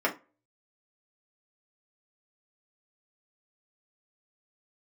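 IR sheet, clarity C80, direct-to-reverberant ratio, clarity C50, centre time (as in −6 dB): 22.0 dB, −2.5 dB, 14.5 dB, 12 ms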